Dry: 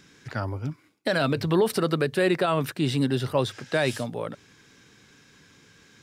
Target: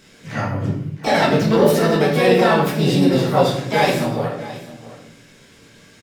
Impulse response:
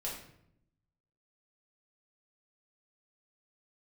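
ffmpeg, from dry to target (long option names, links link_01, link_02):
-filter_complex "[0:a]aecho=1:1:666:0.141,asplit=3[link_01][link_02][link_03];[link_02]asetrate=58866,aresample=44100,atempo=0.749154,volume=-2dB[link_04];[link_03]asetrate=88200,aresample=44100,atempo=0.5,volume=-14dB[link_05];[link_01][link_04][link_05]amix=inputs=3:normalize=0[link_06];[1:a]atrim=start_sample=2205[link_07];[link_06][link_07]afir=irnorm=-1:irlink=0,volume=4dB"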